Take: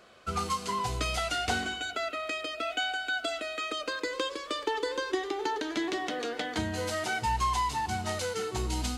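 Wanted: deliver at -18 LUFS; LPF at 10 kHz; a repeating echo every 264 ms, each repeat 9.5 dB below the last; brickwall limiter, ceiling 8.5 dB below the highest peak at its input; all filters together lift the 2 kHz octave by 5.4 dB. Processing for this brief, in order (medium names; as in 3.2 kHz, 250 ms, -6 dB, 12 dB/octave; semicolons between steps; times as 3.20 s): low-pass 10 kHz; peaking EQ 2 kHz +7.5 dB; peak limiter -22 dBFS; feedback delay 264 ms, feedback 33%, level -9.5 dB; trim +12.5 dB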